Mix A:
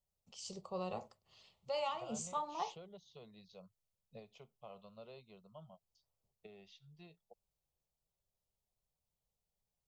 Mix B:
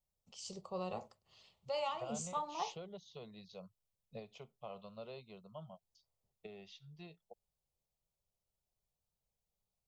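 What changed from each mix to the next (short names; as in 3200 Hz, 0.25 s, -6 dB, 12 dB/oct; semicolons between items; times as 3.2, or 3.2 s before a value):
second voice +5.0 dB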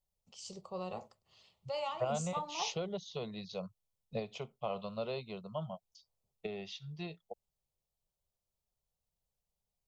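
second voice +10.5 dB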